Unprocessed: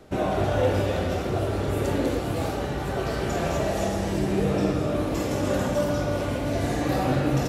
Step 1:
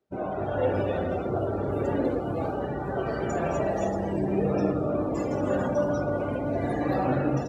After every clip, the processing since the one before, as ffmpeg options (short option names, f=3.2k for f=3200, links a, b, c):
-af "afftdn=nr=24:nf=-34,highpass=f=150:p=1,dynaudnorm=f=410:g=3:m=6dB,volume=-6dB"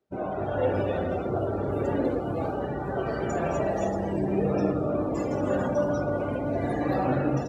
-af anull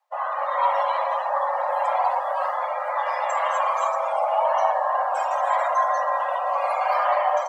-af "afreqshift=460,volume=4dB"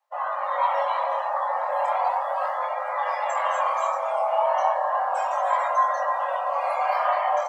-af "flanger=delay=19:depth=7.1:speed=0.35,volume=1.5dB"